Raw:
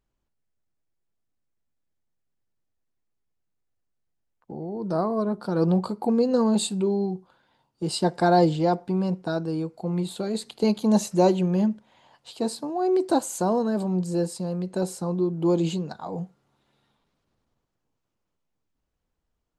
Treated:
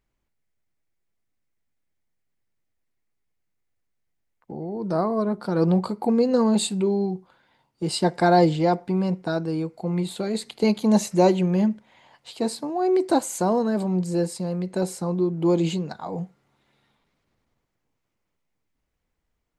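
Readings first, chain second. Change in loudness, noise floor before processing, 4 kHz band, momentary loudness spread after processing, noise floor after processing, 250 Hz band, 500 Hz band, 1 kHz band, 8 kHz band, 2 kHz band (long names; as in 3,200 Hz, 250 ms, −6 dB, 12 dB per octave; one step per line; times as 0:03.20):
+1.5 dB, −79 dBFS, +2.0 dB, 12 LU, −78 dBFS, +1.5 dB, +1.5 dB, +1.5 dB, +1.5 dB, +3.5 dB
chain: parametric band 2,100 Hz +7.5 dB 0.44 octaves
level +1.5 dB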